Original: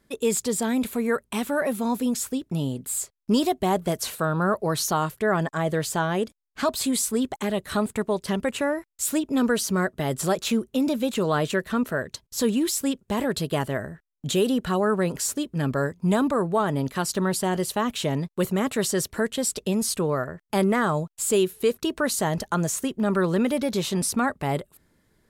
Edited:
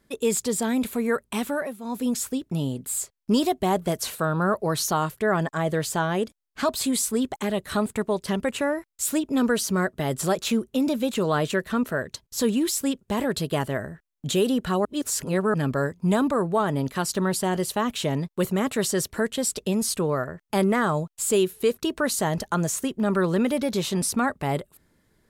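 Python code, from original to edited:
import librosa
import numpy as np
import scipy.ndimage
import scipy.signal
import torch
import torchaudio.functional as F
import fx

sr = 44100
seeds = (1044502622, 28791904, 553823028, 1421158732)

y = fx.edit(x, sr, fx.fade_down_up(start_s=1.47, length_s=0.62, db=-13.5, fade_s=0.3),
    fx.reverse_span(start_s=14.85, length_s=0.69), tone=tone)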